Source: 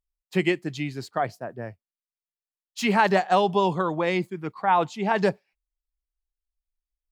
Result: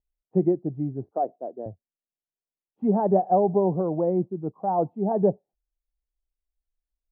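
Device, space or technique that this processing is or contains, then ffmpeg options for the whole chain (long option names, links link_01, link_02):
under water: -filter_complex "[0:a]asettb=1/sr,asplit=3[link_01][link_02][link_03];[link_01]atrim=end=1.114[link_04];[link_02]atrim=start=1.11:end=1.66,asetpts=PTS-STARTPTS,afade=type=in:duration=0.004:curve=qsin,afade=type=out:start_time=0.546:duration=0.004:curve=qsin,highpass=frequency=270:width=0.5412,highpass=frequency=270:width=1.3066[link_05];[link_03]atrim=start=1.656[link_06];[link_04][link_05]acrossfade=duration=0.004:curve1=hsin:curve2=qsin[link_07];[link_07][link_06]acrossfade=duration=0.004:curve1=qsin:curve2=hsin,lowpass=frequency=620:width=0.5412,lowpass=frequency=620:width=1.3066,equalizer=frequency=740:width_type=o:width=0.41:gain=5.5,volume=2dB"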